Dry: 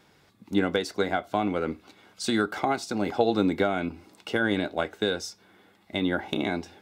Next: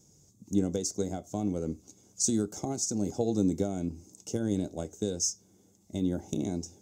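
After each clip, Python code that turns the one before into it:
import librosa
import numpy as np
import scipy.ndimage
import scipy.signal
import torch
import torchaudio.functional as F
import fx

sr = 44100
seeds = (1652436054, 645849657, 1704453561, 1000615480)

y = fx.curve_eq(x, sr, hz=(150.0, 210.0, 510.0, 1700.0, 4200.0, 6500.0, 9600.0), db=(0, -4, -10, -30, -16, 13, -3))
y = y * librosa.db_to_amplitude(3.0)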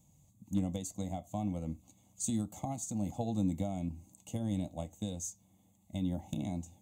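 y = fx.fixed_phaser(x, sr, hz=1500.0, stages=6)
y = np.clip(y, -10.0 ** (-22.5 / 20.0), 10.0 ** (-22.5 / 20.0))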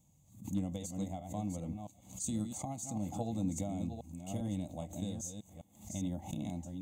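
y = fx.reverse_delay(x, sr, ms=401, wet_db=-6.5)
y = fx.pre_swell(y, sr, db_per_s=120.0)
y = y * librosa.db_to_amplitude(-3.0)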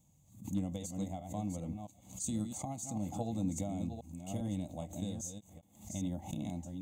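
y = fx.end_taper(x, sr, db_per_s=490.0)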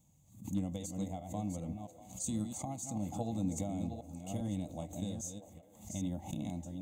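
y = fx.echo_stepped(x, sr, ms=321, hz=430.0, octaves=0.7, feedback_pct=70, wet_db=-11.0)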